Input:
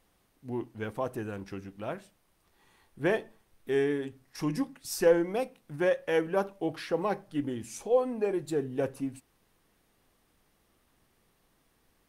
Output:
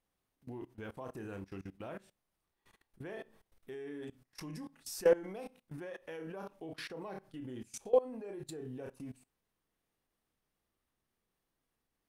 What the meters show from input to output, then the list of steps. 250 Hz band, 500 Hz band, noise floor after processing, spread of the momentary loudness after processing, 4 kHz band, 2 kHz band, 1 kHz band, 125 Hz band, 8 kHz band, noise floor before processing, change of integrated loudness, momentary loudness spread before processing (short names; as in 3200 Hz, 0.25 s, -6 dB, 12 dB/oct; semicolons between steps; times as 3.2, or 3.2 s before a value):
-12.0 dB, -7.5 dB, under -85 dBFS, 18 LU, -7.5 dB, -11.5 dB, -11.0 dB, -9.5 dB, -6.5 dB, -71 dBFS, -8.5 dB, 12 LU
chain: flutter echo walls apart 5.4 m, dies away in 0.21 s; level quantiser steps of 21 dB; gain -1.5 dB